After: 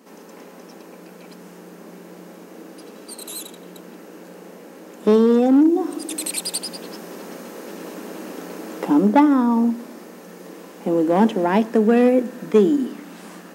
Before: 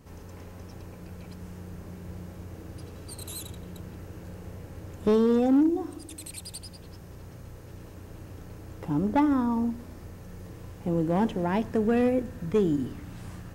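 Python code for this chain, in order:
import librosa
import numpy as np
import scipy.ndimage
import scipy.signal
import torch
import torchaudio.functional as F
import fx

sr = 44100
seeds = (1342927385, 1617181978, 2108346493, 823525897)

p1 = scipy.signal.sosfilt(scipy.signal.ellip(4, 1.0, 40, 200.0, 'highpass', fs=sr, output='sos'), x)
p2 = fx.rider(p1, sr, range_db=10, speed_s=0.5)
p3 = p1 + (p2 * librosa.db_to_amplitude(1.0))
y = p3 * librosa.db_to_amplitude(3.0)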